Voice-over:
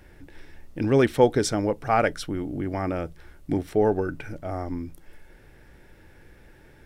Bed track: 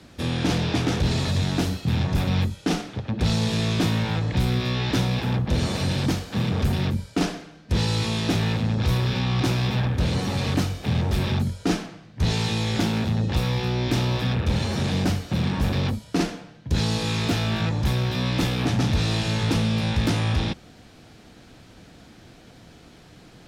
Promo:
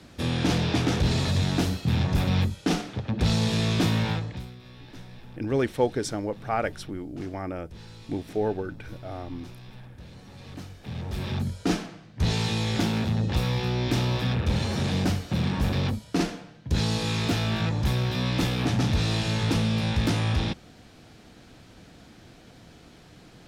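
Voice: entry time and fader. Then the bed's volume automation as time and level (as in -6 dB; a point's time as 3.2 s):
4.60 s, -5.5 dB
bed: 4.11 s -1 dB
4.56 s -22.5 dB
10.24 s -22.5 dB
11.59 s -2 dB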